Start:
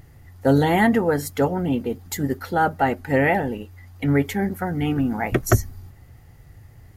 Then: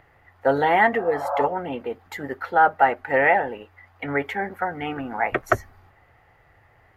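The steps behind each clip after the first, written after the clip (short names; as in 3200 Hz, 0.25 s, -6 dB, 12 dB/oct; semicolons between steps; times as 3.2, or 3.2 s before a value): spectral repair 0.98–1.41, 530–1700 Hz both; three-band isolator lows -20 dB, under 500 Hz, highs -23 dB, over 2700 Hz; gain +5 dB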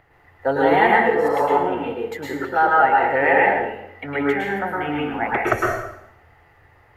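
reverb RT60 0.75 s, pre-delay 0.103 s, DRR -4 dB; gain -1.5 dB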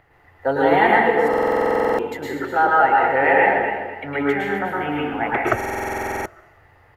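feedback echo 0.247 s, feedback 27%, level -9.5 dB; stuck buffer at 1.29/5.56, samples 2048, times 14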